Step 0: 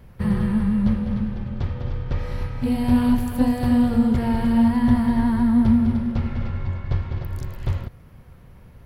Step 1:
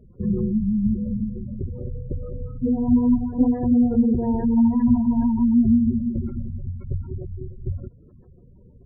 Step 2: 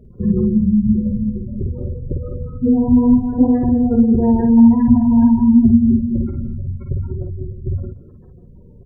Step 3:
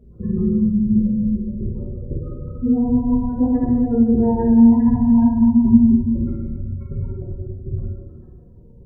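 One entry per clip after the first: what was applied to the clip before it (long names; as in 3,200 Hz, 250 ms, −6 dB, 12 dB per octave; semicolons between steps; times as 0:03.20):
gate on every frequency bin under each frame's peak −20 dB strong; parametric band 380 Hz +14.5 dB 1 octave; notch filter 520 Hz, Q 12; level −5 dB
multi-tap delay 52/172/211 ms −4.5/−18/−17.5 dB; level +5.5 dB
dense smooth reverb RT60 1.3 s, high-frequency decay 0.85×, DRR −2 dB; level −6.5 dB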